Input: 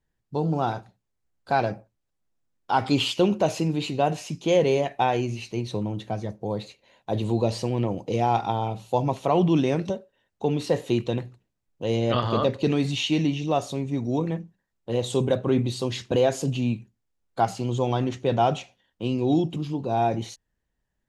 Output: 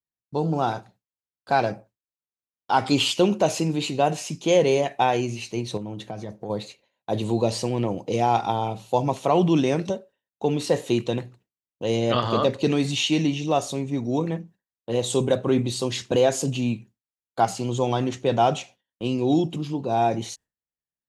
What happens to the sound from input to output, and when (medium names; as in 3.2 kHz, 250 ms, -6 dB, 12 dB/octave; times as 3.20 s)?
5.77–6.50 s: compression 10:1, threshold -29 dBFS
whole clip: high-pass 130 Hz 6 dB/octave; gate with hold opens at -47 dBFS; dynamic bell 8.2 kHz, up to +6 dB, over -53 dBFS, Q 0.91; trim +2 dB